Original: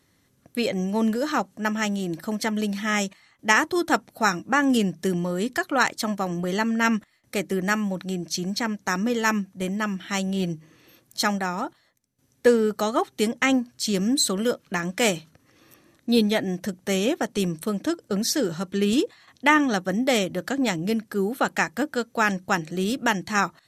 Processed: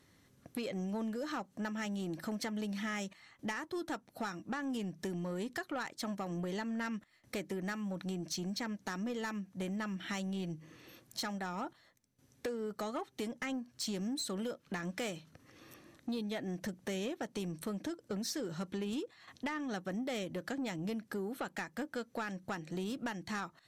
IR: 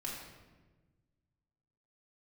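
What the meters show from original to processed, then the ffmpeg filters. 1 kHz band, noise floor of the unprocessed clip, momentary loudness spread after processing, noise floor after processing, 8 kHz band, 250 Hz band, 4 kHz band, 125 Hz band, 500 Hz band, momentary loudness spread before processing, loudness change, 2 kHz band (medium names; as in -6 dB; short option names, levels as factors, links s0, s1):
-17.0 dB, -64 dBFS, 5 LU, -68 dBFS, -16.0 dB, -14.0 dB, -14.5 dB, -12.0 dB, -15.5 dB, 8 LU, -15.0 dB, -17.5 dB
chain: -af "highshelf=f=7900:g=-5.5,acompressor=threshold=0.0224:ratio=8,asoftclip=type=tanh:threshold=0.0335,volume=0.891"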